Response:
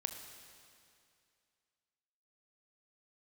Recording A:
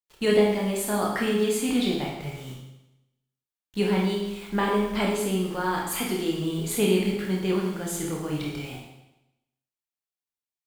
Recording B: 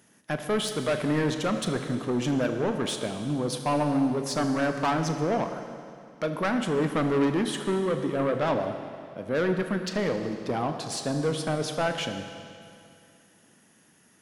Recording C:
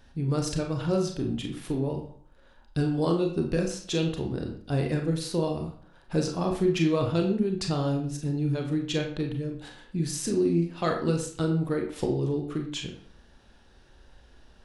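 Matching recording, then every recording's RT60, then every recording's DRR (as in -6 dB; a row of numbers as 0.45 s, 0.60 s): B; 0.90 s, 2.4 s, 0.55 s; -2.5 dB, 6.0 dB, 2.0 dB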